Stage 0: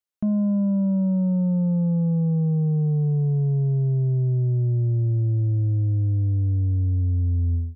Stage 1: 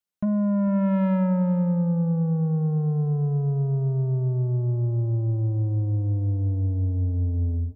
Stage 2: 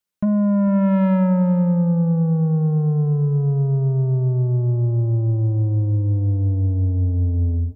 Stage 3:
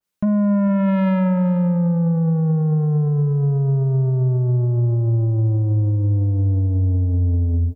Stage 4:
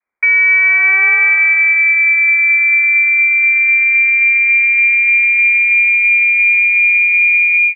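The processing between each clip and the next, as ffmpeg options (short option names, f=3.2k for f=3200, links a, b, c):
-af "equalizer=f=190:t=o:w=0.22:g=11,asoftclip=type=tanh:threshold=-20.5dB,aecho=1:1:450:0.188"
-af "bandreject=f=720:w=18,volume=5dB"
-af "alimiter=limit=-19dB:level=0:latency=1:release=81,aecho=1:1:224:0.0891,adynamicequalizer=threshold=0.00501:dfrequency=1700:dqfactor=0.7:tfrequency=1700:tqfactor=0.7:attack=5:release=100:ratio=0.375:range=4:mode=boostabove:tftype=highshelf,volume=4dB"
-af "lowpass=f=2.1k:t=q:w=0.5098,lowpass=f=2.1k:t=q:w=0.6013,lowpass=f=2.1k:t=q:w=0.9,lowpass=f=2.1k:t=q:w=2.563,afreqshift=-2500,volume=6.5dB"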